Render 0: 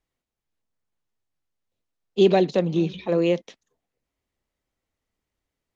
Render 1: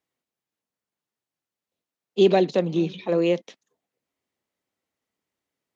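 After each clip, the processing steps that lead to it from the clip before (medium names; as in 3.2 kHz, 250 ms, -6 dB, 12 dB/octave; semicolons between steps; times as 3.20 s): high-pass 160 Hz 12 dB/octave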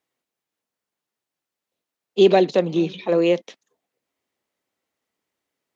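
tone controls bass -5 dB, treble -1 dB; trim +4 dB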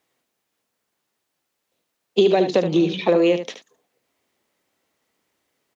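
compression 12:1, threshold -22 dBFS, peak gain reduction 13.5 dB; delay 74 ms -9 dB; trim +8.5 dB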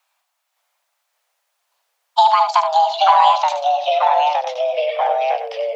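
frequency shift +480 Hz; ever faster or slower copies 563 ms, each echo -2 st, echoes 3; trim +3 dB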